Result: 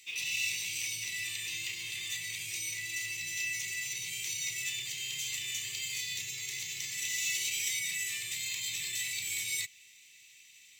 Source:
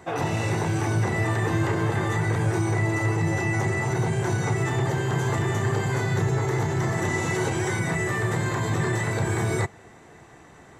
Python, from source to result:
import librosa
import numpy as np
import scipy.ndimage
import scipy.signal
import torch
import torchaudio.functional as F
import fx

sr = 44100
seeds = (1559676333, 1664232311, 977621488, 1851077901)

y = scipy.signal.sosfilt(scipy.signal.ellip(4, 1.0, 40, 2400.0, 'highpass', fs=sr, output='sos'), x)
y = np.interp(np.arange(len(y)), np.arange(len(y))[::2], y[::2])
y = y * librosa.db_to_amplitude(6.5)